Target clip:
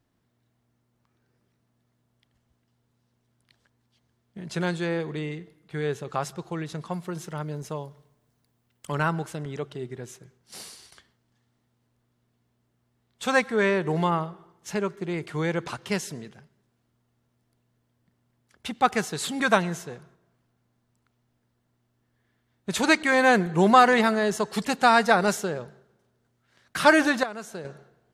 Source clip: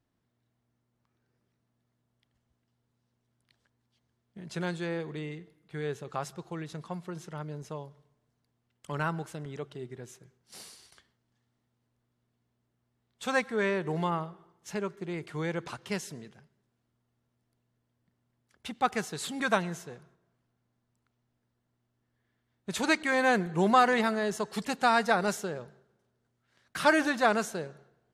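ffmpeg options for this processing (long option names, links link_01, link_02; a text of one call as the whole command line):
ffmpeg -i in.wav -filter_complex "[0:a]asettb=1/sr,asplit=3[link_01][link_02][link_03];[link_01]atrim=end=6.894[link_04];[link_02]atrim=start=6.89:end=8.95,asetpts=PTS-STARTPTS,afade=type=in:duration=0.004:curve=qsin,afade=type=out:start_time=2.056:duration=0.004:curve=qsin,highshelf=frequency=11000:gain=10.5[link_05];[link_03]atrim=start=8.946[link_06];[link_04][link_05]acrossfade=duration=0.004:curve1=hsin:curve2=qsin[link_07];[link_07][link_06]acrossfade=duration=0.004:curve1=qsin:curve2=hsin,asettb=1/sr,asplit=3[link_08][link_09][link_10];[link_08]atrim=end=27.234[link_11];[link_09]atrim=start=27.23:end=27.65,asetpts=PTS-STARTPTS,afade=type=in:duration=0.004:curve=qsin,afade=type=out:start_time=0.416:duration=0.004:curve=qsin,acompressor=threshold=-39dB:ratio=5[link_12];[link_10]atrim=start=27.646[link_13];[link_11][link_12]acrossfade=duration=0.004:curve1=hsin:curve2=qsin[link_14];[link_14][link_13]acrossfade=duration=0.004:curve1=qsin:curve2=hsin,volume=6dB" out.wav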